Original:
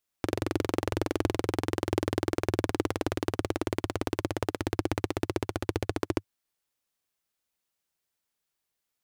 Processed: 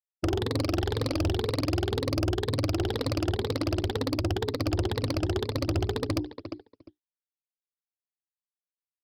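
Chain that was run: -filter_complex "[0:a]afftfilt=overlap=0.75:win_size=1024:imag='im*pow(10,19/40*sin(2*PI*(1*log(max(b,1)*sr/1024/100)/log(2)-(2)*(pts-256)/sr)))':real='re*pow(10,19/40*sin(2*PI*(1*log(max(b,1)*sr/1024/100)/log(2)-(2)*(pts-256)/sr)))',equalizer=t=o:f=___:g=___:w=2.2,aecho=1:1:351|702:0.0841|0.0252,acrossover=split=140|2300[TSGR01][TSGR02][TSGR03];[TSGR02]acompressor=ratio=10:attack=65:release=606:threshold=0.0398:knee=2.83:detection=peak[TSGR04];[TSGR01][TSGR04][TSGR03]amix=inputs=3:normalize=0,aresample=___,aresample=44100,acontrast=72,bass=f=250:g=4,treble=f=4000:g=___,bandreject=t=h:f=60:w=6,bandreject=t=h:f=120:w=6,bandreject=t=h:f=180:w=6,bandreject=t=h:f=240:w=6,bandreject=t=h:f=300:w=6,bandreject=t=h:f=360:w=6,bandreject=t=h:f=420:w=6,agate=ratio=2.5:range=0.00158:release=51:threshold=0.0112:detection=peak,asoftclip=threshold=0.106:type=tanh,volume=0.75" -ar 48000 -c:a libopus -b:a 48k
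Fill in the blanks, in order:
460, 7, 11025, 15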